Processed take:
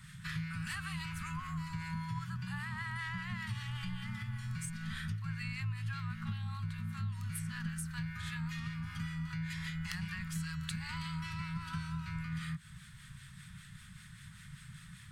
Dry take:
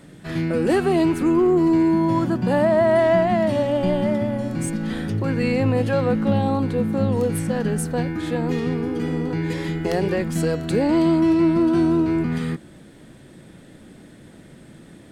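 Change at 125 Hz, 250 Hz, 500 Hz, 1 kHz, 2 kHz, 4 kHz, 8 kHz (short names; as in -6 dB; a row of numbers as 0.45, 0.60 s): -12.5 dB, -23.5 dB, under -40 dB, -19.5 dB, -9.5 dB, -9.0 dB, -11.0 dB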